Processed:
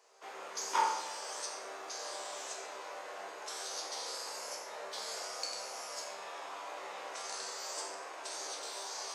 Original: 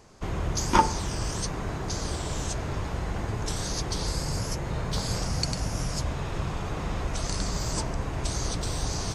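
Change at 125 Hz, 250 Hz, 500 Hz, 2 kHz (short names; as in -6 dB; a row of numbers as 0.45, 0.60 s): under -40 dB, -26.0 dB, -9.5 dB, -6.5 dB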